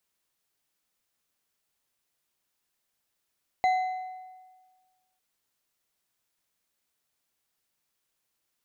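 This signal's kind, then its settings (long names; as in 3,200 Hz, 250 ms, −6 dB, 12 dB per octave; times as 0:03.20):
struck metal bar, lowest mode 744 Hz, decay 1.50 s, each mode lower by 11 dB, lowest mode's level −19 dB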